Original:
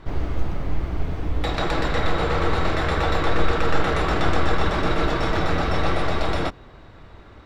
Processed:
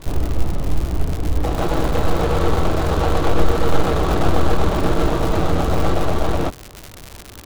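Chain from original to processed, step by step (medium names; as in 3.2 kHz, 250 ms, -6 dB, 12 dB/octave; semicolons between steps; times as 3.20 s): median filter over 25 samples; crackle 150 per s -26 dBFS; trim +5 dB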